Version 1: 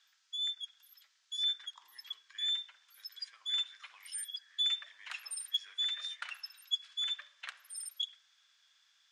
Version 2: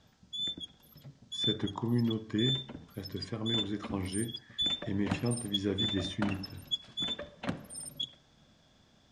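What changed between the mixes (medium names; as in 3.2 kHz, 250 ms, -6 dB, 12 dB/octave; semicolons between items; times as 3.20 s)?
speech +6.0 dB; master: remove high-pass 1.4 kHz 24 dB/octave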